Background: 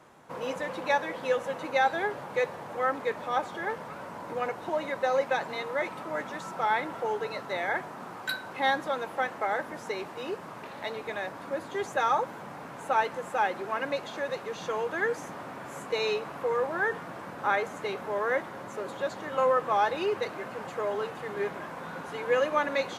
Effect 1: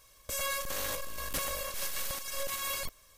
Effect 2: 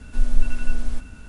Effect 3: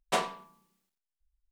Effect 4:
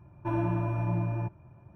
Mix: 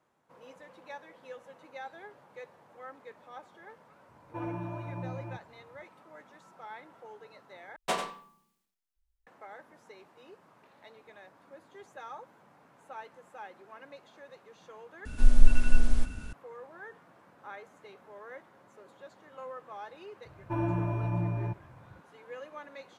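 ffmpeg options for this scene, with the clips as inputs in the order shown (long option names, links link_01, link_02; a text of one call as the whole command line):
ffmpeg -i bed.wav -i cue0.wav -i cue1.wav -i cue2.wav -i cue3.wav -filter_complex "[4:a]asplit=2[link_01][link_02];[0:a]volume=-18.5dB[link_03];[link_01]highpass=frequency=170:poles=1[link_04];[3:a]asplit=2[link_05][link_06];[link_06]adelay=93.29,volume=-7dB,highshelf=frequency=4000:gain=-2.1[link_07];[link_05][link_07]amix=inputs=2:normalize=0[link_08];[link_03]asplit=3[link_09][link_10][link_11];[link_09]atrim=end=7.764[link_12];[link_08]atrim=end=1.51,asetpts=PTS-STARTPTS,volume=-2.5dB[link_13];[link_10]atrim=start=9.266:end=15.054[link_14];[2:a]atrim=end=1.28[link_15];[link_11]atrim=start=16.326[link_16];[link_04]atrim=end=1.75,asetpts=PTS-STARTPTS,volume=-6dB,afade=type=in:duration=0.004:curve=hsin,afade=type=out:start_time=1.746:duration=0.004:curve=hsin,adelay=180369S[link_17];[link_02]atrim=end=1.75,asetpts=PTS-STARTPTS,volume=-1.5dB,afade=type=in:duration=0.004:curve=hsin,afade=type=out:start_time=1.746:duration=0.004:curve=hsin,adelay=20250[link_18];[link_12][link_13]acrossfade=duration=0.004:curve1=hsin:curve2=hsin[link_19];[link_19][link_14]acrossfade=duration=0.004:curve1=hsin:curve2=hsin[link_20];[link_20][link_15]acrossfade=duration=0.004:curve1=hsin:curve2=hsin[link_21];[link_21][link_16]acrossfade=duration=0.004:curve1=hsin:curve2=hsin[link_22];[link_22][link_17][link_18]amix=inputs=3:normalize=0" out.wav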